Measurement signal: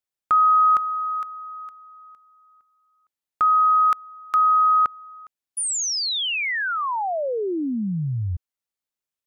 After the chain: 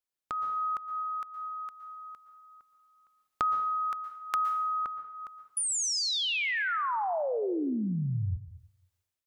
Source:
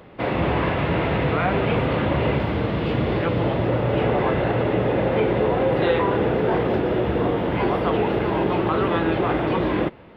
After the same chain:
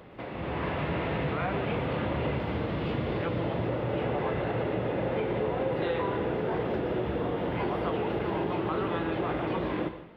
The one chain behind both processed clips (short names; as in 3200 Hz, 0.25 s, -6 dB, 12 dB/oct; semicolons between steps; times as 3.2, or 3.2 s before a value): compressor 2.5:1, threshold -40 dBFS; plate-style reverb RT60 0.71 s, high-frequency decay 1×, pre-delay 0.105 s, DRR 10.5 dB; AGC gain up to 9 dB; gain -4 dB